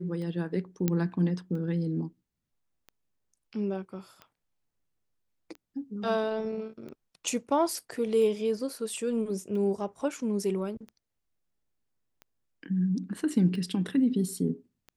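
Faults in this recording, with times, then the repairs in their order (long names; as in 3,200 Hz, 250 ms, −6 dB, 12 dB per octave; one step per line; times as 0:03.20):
scratch tick 45 rpm −31 dBFS
0:00.88: click −13 dBFS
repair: click removal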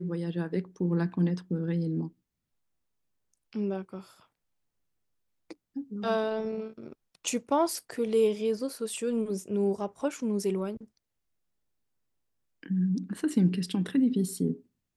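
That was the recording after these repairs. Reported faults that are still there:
none of them is left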